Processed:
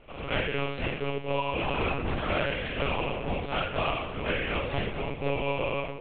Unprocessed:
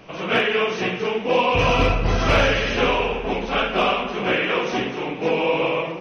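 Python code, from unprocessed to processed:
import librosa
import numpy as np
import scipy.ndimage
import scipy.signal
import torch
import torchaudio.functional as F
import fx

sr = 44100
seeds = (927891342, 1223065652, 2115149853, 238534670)

y = fx.rider(x, sr, range_db=10, speed_s=0.5)
y = fx.lpc_monotone(y, sr, seeds[0], pitch_hz=140.0, order=10)
y = y * librosa.db_to_amplitude(-9.0)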